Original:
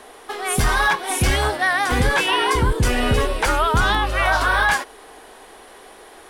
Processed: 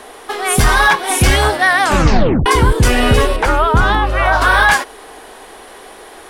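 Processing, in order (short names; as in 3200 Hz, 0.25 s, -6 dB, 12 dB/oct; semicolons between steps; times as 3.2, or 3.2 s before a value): 1.8 tape stop 0.66 s; 3.36–4.42 high shelf 2500 Hz -11 dB; gain +7 dB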